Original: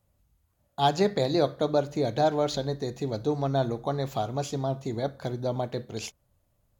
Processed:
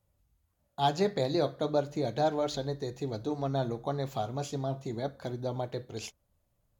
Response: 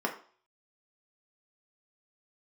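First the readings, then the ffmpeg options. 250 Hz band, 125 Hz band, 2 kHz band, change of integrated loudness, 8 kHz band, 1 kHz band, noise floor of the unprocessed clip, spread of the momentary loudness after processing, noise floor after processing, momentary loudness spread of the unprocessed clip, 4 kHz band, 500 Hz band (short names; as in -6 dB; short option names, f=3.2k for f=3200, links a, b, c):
-4.0 dB, -4.0 dB, -4.5 dB, -4.5 dB, -4.5 dB, -4.0 dB, -72 dBFS, 8 LU, -76 dBFS, 8 LU, -4.5 dB, -4.5 dB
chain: -af "flanger=delay=2.1:depth=5.8:regen=-68:speed=0.35:shape=sinusoidal"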